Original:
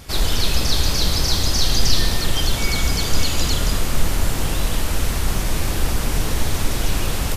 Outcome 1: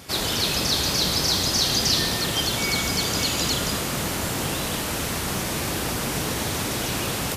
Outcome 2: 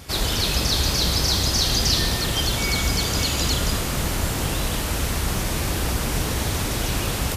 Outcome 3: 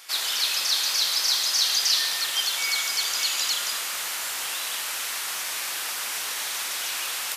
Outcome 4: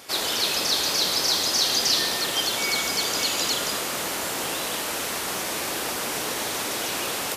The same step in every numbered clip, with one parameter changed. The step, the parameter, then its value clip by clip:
HPF, cutoff: 130, 50, 1300, 380 Hz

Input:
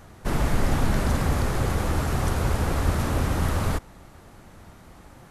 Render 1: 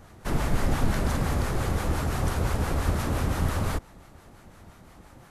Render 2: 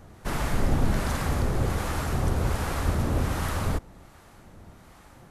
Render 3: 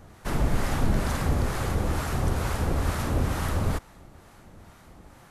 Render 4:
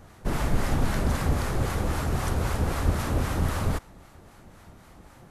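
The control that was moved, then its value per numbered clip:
harmonic tremolo, rate: 5.8, 1.3, 2.2, 3.8 Hz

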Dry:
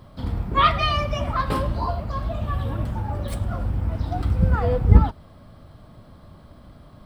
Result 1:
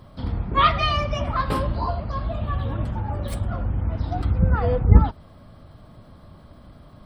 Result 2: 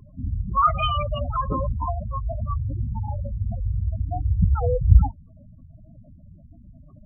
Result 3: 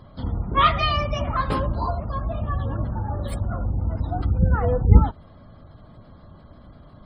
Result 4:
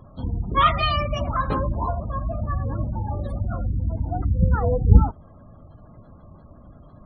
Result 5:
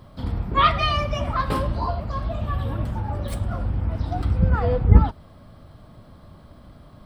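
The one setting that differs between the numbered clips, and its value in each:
spectral gate, under each frame's peak: -50, -10, -35, -25, -60 dB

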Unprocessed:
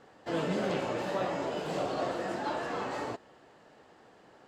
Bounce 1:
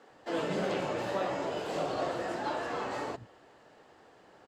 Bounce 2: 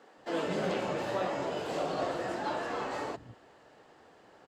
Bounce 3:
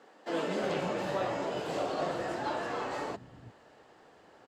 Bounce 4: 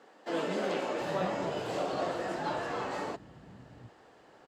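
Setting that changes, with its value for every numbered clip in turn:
bands offset in time, time: 0.1, 0.18, 0.35, 0.73 s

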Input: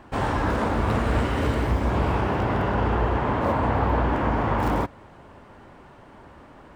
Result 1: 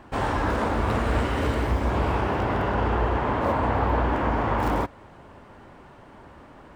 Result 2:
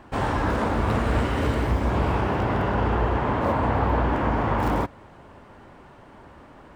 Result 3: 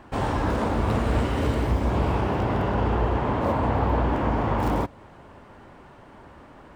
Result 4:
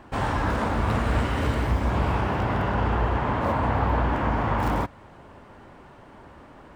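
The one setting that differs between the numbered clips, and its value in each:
dynamic EQ, frequency: 150, 7600, 1600, 390 Hz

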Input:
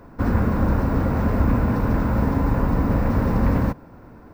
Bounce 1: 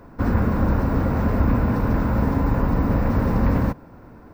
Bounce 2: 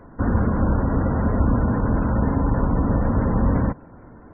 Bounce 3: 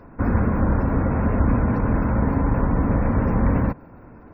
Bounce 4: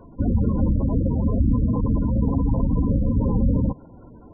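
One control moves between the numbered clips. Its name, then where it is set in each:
spectral gate, under each frame's peak: -60, -30, -40, -15 dB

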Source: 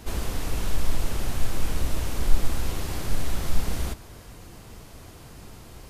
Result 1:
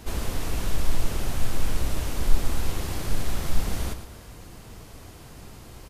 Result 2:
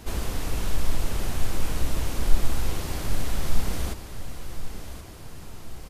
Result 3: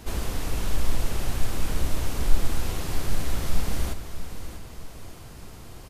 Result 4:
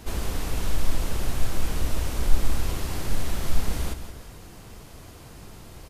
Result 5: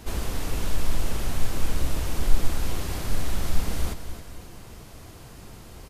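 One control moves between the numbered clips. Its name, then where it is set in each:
feedback echo, time: 0.111, 1.075, 0.642, 0.171, 0.268 s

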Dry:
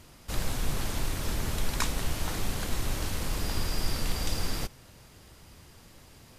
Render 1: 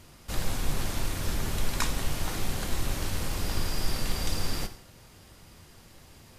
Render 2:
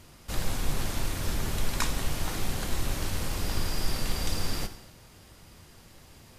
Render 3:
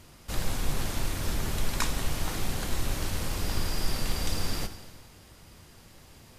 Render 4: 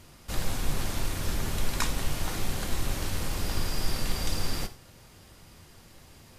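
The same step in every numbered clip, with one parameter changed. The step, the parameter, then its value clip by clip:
non-linear reverb, gate: 0.22, 0.33, 0.54, 0.14 s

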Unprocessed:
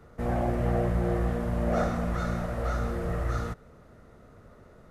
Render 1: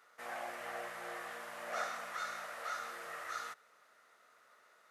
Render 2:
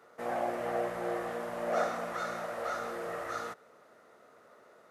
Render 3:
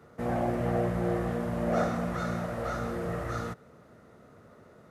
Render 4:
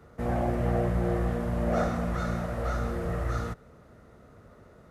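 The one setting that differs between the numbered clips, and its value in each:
HPF, cutoff: 1400, 500, 120, 43 Hz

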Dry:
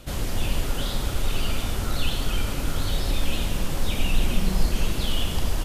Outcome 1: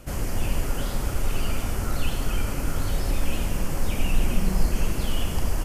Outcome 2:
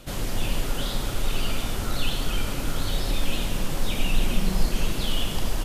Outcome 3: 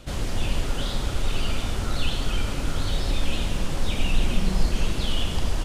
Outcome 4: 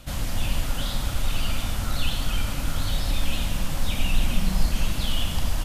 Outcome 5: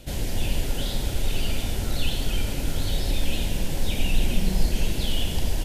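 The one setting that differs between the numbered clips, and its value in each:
bell, frequency: 3700, 66, 13000, 400, 1200 Hz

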